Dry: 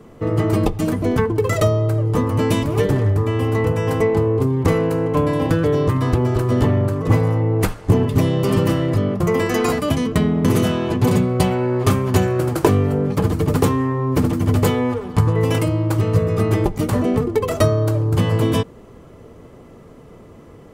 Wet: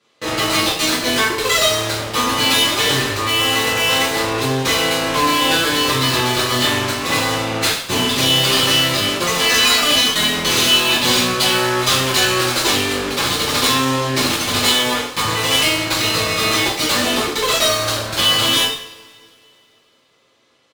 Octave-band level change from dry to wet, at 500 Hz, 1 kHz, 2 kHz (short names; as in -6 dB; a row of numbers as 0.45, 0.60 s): -2.5, +6.0, +13.0 dB